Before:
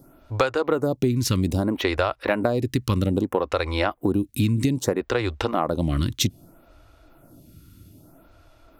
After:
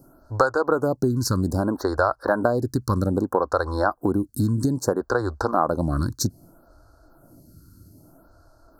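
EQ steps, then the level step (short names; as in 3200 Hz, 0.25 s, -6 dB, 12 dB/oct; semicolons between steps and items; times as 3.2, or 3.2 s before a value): Chebyshev band-stop 1600–4300 Hz, order 4; dynamic EQ 1200 Hz, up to +5 dB, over -38 dBFS, Q 0.74; 0.0 dB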